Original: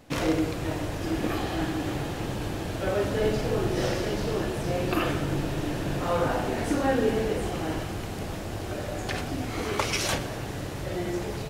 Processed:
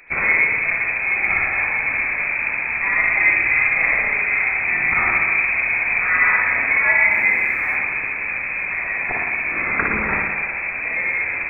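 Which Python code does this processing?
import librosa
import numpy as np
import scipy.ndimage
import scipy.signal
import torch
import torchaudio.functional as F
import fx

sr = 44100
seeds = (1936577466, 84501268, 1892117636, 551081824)

y = fx.freq_invert(x, sr, carrier_hz=2500)
y = fx.dmg_noise_colour(y, sr, seeds[0], colour='white', level_db=-65.0, at=(7.1, 7.75), fade=0.02)
y = fx.rev_spring(y, sr, rt60_s=1.2, pass_ms=(56,), chirp_ms=40, drr_db=0.5)
y = F.gain(torch.from_numpy(y), 6.0).numpy()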